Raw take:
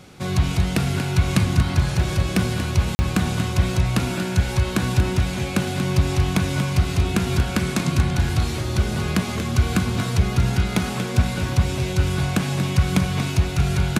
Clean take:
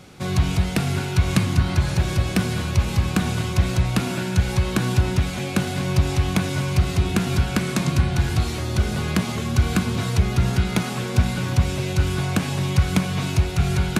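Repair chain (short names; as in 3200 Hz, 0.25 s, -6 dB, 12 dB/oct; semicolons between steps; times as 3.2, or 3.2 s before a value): interpolate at 2.95, 40 ms; inverse comb 0.235 s -10 dB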